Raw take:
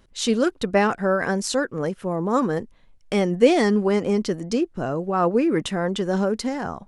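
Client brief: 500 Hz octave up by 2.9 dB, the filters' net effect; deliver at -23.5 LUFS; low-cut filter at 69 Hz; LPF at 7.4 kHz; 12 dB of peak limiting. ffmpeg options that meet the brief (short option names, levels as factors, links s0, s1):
-af "highpass=69,lowpass=7400,equalizer=f=500:t=o:g=3.5,volume=0.944,alimiter=limit=0.211:level=0:latency=1"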